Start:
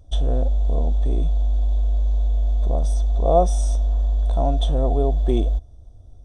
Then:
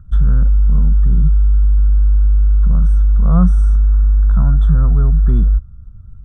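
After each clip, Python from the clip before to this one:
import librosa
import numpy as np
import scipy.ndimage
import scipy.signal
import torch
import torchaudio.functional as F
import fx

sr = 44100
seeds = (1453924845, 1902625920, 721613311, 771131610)

y = fx.curve_eq(x, sr, hz=(100.0, 180.0, 300.0, 460.0, 710.0, 1400.0, 2300.0, 6200.0, 9200.0), db=(0, 10, -18, -19, -26, 11, -23, -25, -20))
y = y * 10.0 ** (8.5 / 20.0)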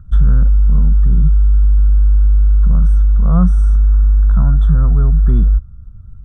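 y = fx.rider(x, sr, range_db=10, speed_s=0.5)
y = y * 10.0 ** (1.0 / 20.0)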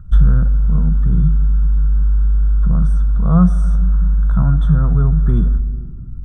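y = fx.room_shoebox(x, sr, seeds[0], volume_m3=3900.0, walls='mixed', distance_m=0.57)
y = y * 10.0 ** (1.5 / 20.0)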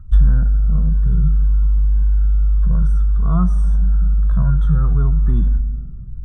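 y = fx.comb_cascade(x, sr, direction='falling', hz=0.58)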